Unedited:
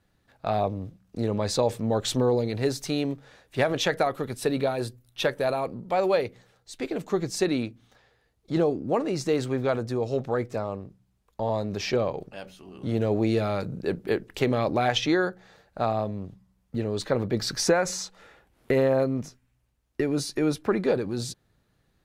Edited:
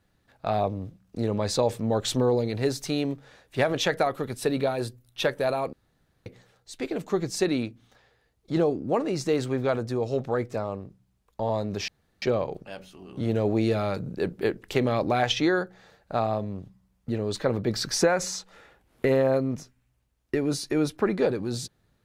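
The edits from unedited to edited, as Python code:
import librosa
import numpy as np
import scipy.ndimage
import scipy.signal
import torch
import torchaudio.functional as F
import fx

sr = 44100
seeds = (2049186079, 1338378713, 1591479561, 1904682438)

y = fx.edit(x, sr, fx.room_tone_fill(start_s=5.73, length_s=0.53),
    fx.insert_room_tone(at_s=11.88, length_s=0.34), tone=tone)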